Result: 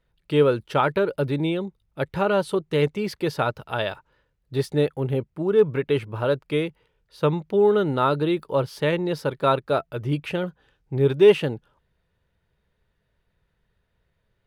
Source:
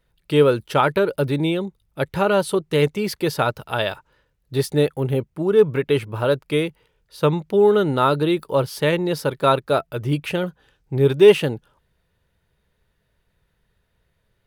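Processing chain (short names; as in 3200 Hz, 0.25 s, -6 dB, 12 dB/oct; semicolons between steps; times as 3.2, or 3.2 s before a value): high shelf 6900 Hz -11 dB; gain -3 dB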